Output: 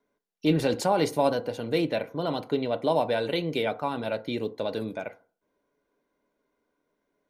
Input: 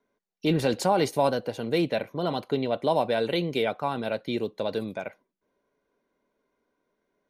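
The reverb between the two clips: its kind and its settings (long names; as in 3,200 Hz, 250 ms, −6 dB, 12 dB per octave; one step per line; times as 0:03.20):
feedback delay network reverb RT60 0.41 s, low-frequency decay 0.9×, high-frequency decay 0.3×, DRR 10.5 dB
level −1 dB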